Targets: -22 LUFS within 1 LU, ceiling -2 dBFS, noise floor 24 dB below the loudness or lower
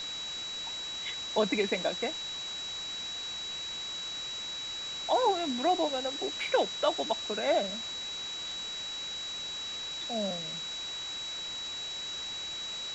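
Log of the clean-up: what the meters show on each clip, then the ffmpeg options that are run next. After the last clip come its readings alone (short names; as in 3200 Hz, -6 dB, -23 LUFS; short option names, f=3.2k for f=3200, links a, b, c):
steady tone 3900 Hz; tone level -36 dBFS; noise floor -38 dBFS; noise floor target -57 dBFS; loudness -32.5 LUFS; peak -14.5 dBFS; loudness target -22.0 LUFS
-> -af "bandreject=f=3.9k:w=30"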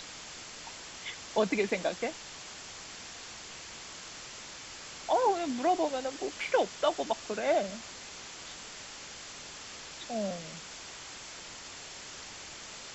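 steady tone none; noise floor -46 dBFS; noise floor target -59 dBFS
-> -af "afftdn=nr=13:nf=-46"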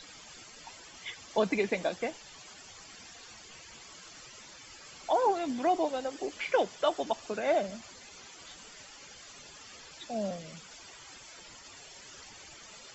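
noise floor -51 dBFS; noise floor target -56 dBFS
-> -af "afftdn=nr=6:nf=-51"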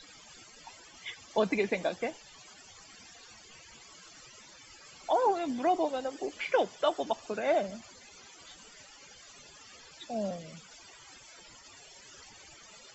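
noise floor -54 dBFS; noise floor target -56 dBFS
-> -af "afftdn=nr=6:nf=-54"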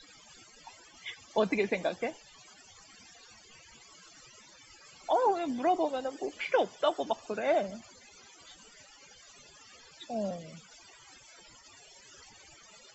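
noise floor -57 dBFS; loudness -31.5 LUFS; peak -15.0 dBFS; loudness target -22.0 LUFS
-> -af "volume=9.5dB"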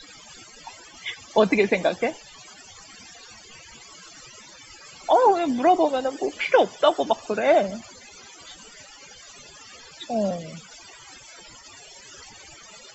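loudness -22.0 LUFS; peak -5.5 dBFS; noise floor -47 dBFS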